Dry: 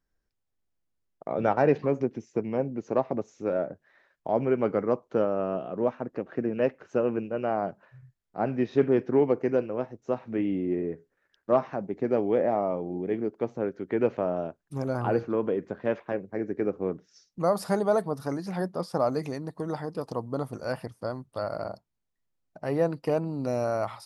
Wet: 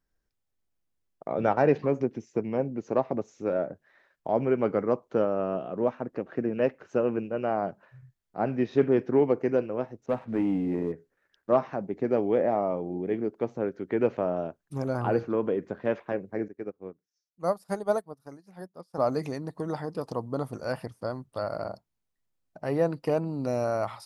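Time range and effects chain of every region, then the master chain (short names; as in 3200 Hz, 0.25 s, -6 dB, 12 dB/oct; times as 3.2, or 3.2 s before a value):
10.06–10.92 air absorption 270 m + notch 370 Hz, Q 6.4 + sample leveller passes 1
16.48–18.98 high shelf 9000 Hz +10.5 dB + upward expander 2.5:1, over -38 dBFS
whole clip: dry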